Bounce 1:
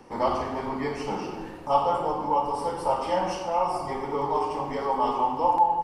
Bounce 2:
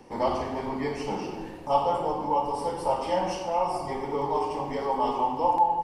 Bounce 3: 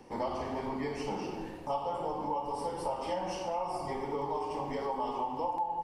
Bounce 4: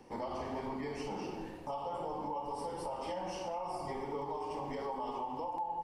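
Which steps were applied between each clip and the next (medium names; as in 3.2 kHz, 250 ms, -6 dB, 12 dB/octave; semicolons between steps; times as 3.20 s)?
peaking EQ 1.3 kHz -6.5 dB 0.58 oct
compression 4:1, threshold -28 dBFS, peak gain reduction 10 dB; trim -3 dB
peak limiter -27 dBFS, peak gain reduction 5 dB; trim -3 dB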